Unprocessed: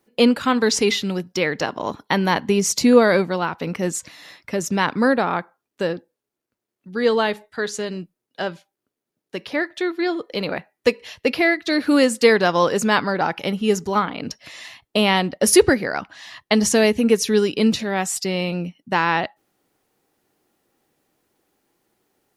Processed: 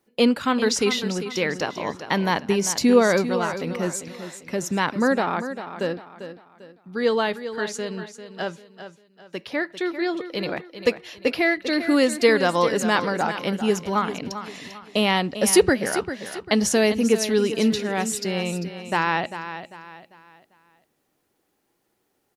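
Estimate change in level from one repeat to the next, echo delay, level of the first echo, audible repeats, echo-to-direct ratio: -9.0 dB, 0.396 s, -11.0 dB, 3, -10.5 dB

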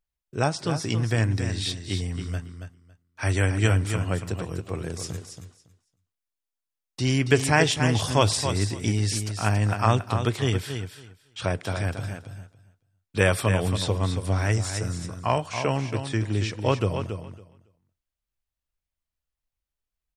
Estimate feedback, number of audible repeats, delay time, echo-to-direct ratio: 16%, 2, 0.278 s, -8.0 dB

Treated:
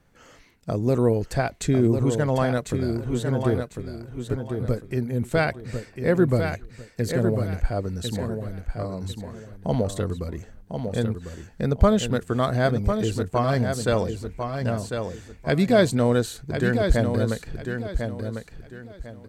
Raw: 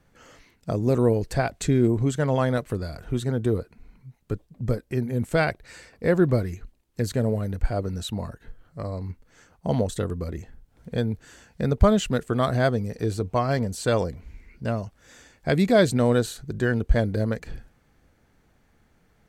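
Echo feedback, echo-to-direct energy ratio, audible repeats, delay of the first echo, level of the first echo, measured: 27%, -6.0 dB, 3, 1.049 s, -6.5 dB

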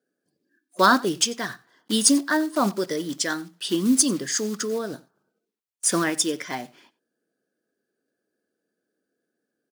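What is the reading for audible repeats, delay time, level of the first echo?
1, 92 ms, -22.0 dB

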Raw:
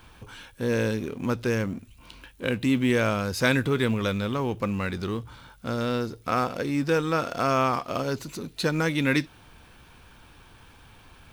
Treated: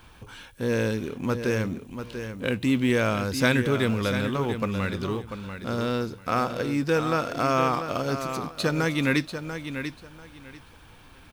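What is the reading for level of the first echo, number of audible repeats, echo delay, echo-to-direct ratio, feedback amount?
-9.0 dB, 2, 0.691 s, -9.0 dB, 20%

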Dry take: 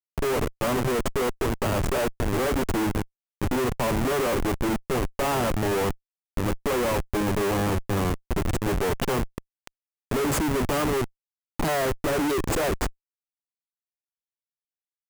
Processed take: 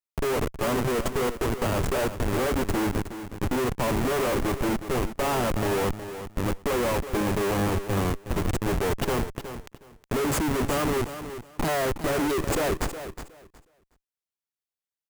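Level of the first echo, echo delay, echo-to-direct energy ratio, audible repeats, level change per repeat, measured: -11.0 dB, 0.366 s, -11.0 dB, 2, -14.5 dB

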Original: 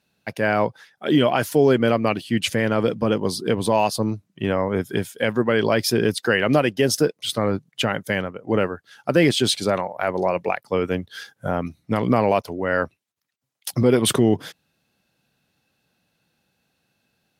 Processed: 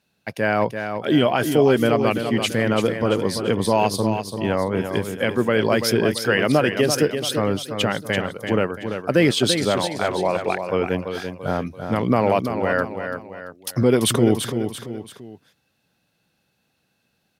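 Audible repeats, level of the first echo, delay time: 3, -7.5 dB, 0.338 s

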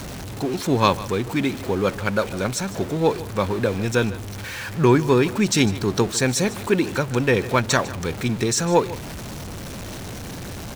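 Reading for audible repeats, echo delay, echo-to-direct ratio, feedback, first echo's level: 1, 0.151 s, -17.0 dB, no steady repeat, -17.0 dB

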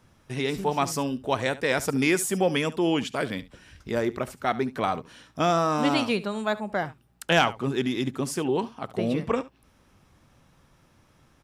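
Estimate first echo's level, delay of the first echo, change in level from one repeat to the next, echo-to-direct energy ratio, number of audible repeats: -17.5 dB, 71 ms, no steady repeat, -17.5 dB, 1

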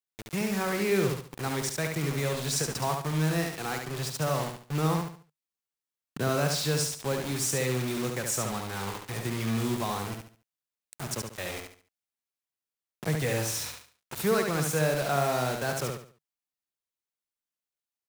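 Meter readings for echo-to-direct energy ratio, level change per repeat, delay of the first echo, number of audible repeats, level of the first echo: -4.0 dB, -10.0 dB, 71 ms, 4, -4.5 dB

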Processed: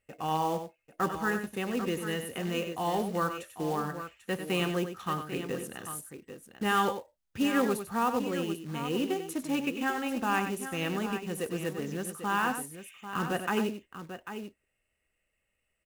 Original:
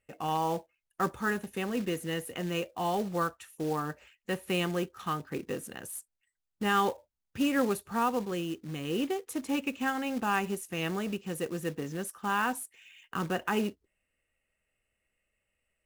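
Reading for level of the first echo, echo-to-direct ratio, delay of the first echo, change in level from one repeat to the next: -9.0 dB, -6.5 dB, 96 ms, no steady repeat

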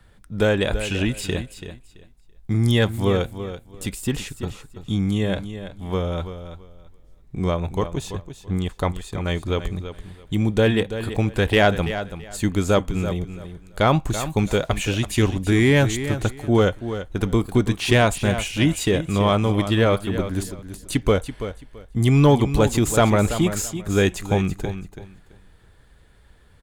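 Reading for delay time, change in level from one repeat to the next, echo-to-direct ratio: 0.333 s, -13.5 dB, -11.0 dB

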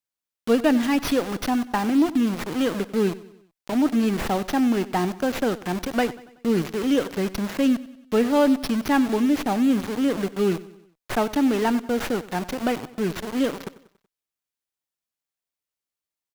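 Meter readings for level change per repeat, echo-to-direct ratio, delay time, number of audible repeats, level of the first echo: -6.0 dB, -17.0 dB, 94 ms, 3, -18.0 dB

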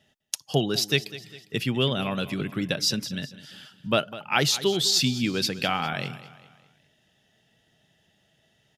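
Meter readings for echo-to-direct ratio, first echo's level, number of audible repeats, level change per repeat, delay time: -15.0 dB, -16.0 dB, 3, -7.0 dB, 0.202 s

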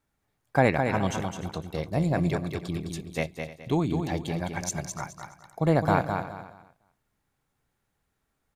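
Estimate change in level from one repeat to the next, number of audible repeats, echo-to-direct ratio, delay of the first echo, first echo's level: no steady repeat, 6, -5.5 dB, 0.21 s, -6.0 dB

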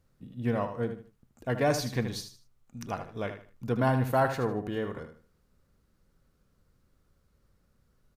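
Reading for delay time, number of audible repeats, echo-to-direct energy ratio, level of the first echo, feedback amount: 77 ms, 3, -8.5 dB, -9.0 dB, 29%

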